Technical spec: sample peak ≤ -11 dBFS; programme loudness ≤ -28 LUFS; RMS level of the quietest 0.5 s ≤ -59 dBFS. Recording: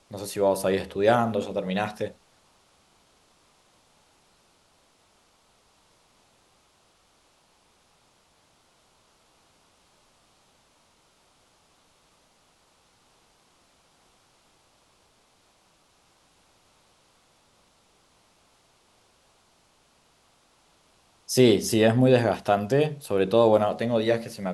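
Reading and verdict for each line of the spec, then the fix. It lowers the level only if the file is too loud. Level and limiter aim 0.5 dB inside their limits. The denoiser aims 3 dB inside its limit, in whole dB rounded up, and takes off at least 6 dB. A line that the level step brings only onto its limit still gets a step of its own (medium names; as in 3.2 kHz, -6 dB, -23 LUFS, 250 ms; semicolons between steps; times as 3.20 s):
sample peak -5.5 dBFS: fail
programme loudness -23.0 LUFS: fail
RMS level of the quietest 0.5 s -63 dBFS: pass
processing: trim -5.5 dB; peak limiter -11.5 dBFS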